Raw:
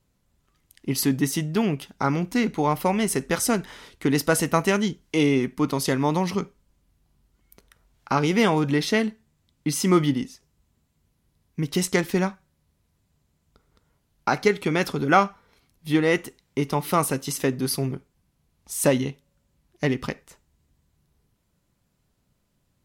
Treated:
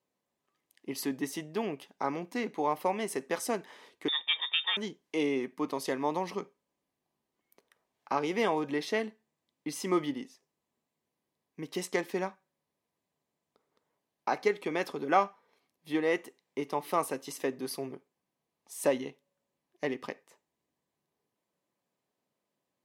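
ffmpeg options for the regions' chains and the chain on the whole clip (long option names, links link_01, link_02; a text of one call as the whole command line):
ffmpeg -i in.wav -filter_complex "[0:a]asettb=1/sr,asplit=3[link_01][link_02][link_03];[link_01]atrim=end=4.084[link_04];[link_02]atrim=start=4.08:end=4.77,asetpts=PTS-STARTPTS,afade=type=in:duration=0.004:curve=qsin,afade=type=out:start_time=0.686:duration=0.004:curve=qsin,lowpass=frequency=3200:width_type=q:width=0.5098,lowpass=frequency=3200:width_type=q:width=0.6013,lowpass=frequency=3200:width_type=q:width=0.9,lowpass=frequency=3200:width_type=q:width=2.563,afreqshift=-3800,aecho=1:1:2.2:0.37,atrim=end_sample=30429[link_05];[link_03]atrim=start=4.766[link_06];[link_04][link_05]acrossfade=duration=0.004:curve1=hsin:curve2=qsin[link_07];[link_07][link_06]acrossfade=duration=0.004:curve1=qsin:curve2=hsin,highpass=380,highshelf=frequency=2300:gain=-9,bandreject=frequency=1400:width=6.3,volume=-4.5dB" out.wav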